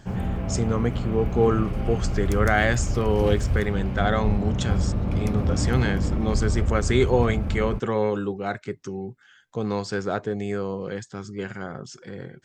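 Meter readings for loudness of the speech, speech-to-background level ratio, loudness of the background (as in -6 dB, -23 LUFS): -26.5 LUFS, 0.5 dB, -27.0 LUFS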